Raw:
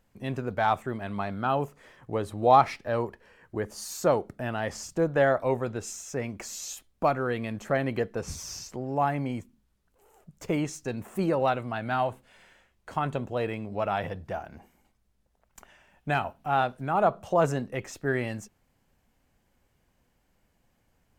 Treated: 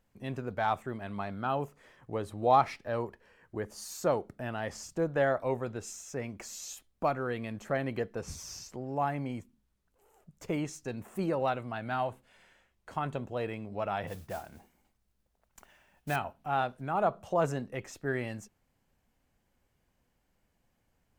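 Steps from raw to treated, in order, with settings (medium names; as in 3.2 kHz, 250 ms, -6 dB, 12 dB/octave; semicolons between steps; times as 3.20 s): 14.07–16.16 s: modulation noise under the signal 15 dB; trim -5 dB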